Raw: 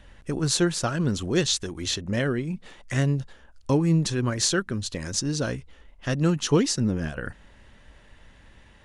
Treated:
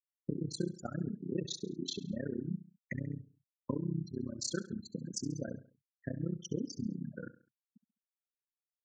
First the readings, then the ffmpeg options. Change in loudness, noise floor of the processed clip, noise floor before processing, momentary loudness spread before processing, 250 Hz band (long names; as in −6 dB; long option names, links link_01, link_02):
−14.5 dB, below −85 dBFS, −54 dBFS, 12 LU, −12.0 dB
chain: -filter_complex "[0:a]lowshelf=frequency=280:gain=10,acompressor=threshold=-33dB:ratio=5,crystalizer=i=0.5:c=0,highpass=frequency=160:width=0.5412,highpass=frequency=160:width=1.3066,afftfilt=real='re*gte(hypot(re,im),0.0316)':imag='im*gte(hypot(re,im),0.0316)':win_size=1024:overlap=0.75,tremolo=f=32:d=0.974,highshelf=frequency=9900:gain=-5,asplit=2[link_01][link_02];[link_02]aecho=0:1:68|136|204:0.168|0.0655|0.0255[link_03];[link_01][link_03]amix=inputs=2:normalize=0,volume=3dB"